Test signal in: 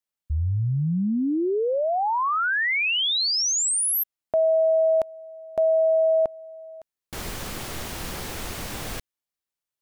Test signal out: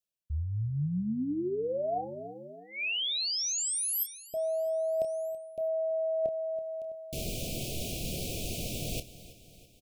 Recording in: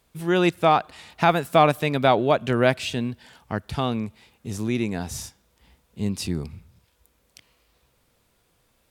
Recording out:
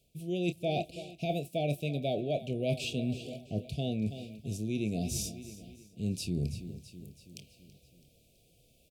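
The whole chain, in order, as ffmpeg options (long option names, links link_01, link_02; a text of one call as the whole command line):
ffmpeg -i in.wav -filter_complex "[0:a]asuperstop=centerf=1300:order=20:qfactor=0.8,equalizer=frequency=140:width_type=o:width=0.66:gain=5,asplit=2[link_01][link_02];[link_02]adelay=28,volume=-12dB[link_03];[link_01][link_03]amix=inputs=2:normalize=0,asplit=2[link_04][link_05];[link_05]aecho=0:1:329|658|987|1316|1645:0.112|0.0628|0.0352|0.0197|0.011[link_06];[link_04][link_06]amix=inputs=2:normalize=0,areverse,acompressor=threshold=-31dB:ratio=6:attack=67:release=428:knee=6:detection=rms,areverse" out.wav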